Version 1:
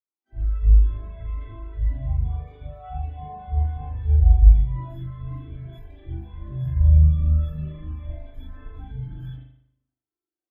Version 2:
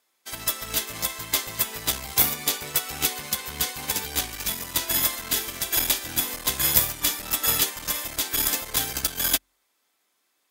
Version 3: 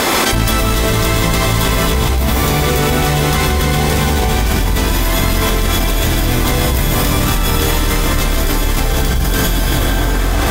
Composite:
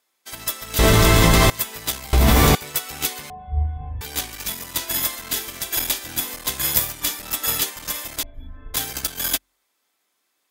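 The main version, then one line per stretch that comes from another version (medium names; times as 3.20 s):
2
0.79–1.50 s: from 3
2.13–2.55 s: from 3
3.30–4.01 s: from 1
8.23–8.74 s: from 1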